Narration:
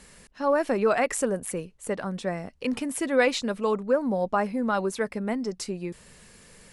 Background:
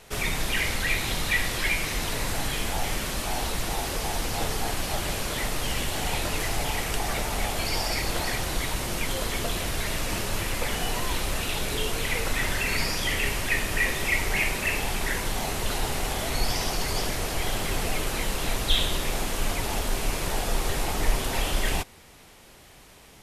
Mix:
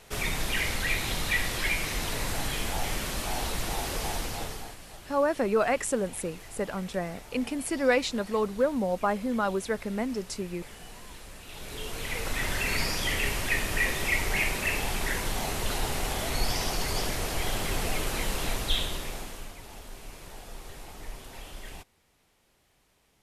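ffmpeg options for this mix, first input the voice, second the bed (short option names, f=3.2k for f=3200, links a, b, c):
-filter_complex "[0:a]adelay=4700,volume=-2dB[a];[1:a]volume=14dB,afade=t=out:st=4.09:d=0.69:silence=0.158489,afade=t=in:st=11.41:d=1.25:silence=0.149624,afade=t=out:st=18.38:d=1.14:silence=0.177828[b];[a][b]amix=inputs=2:normalize=0"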